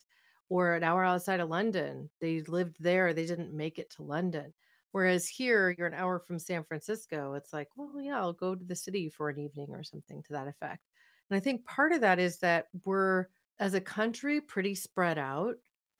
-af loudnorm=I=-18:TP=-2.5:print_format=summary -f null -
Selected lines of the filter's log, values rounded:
Input Integrated:    -32.5 LUFS
Input True Peak:     -11.7 dBTP
Input LRA:             5.7 LU
Input Threshold:     -43.0 LUFS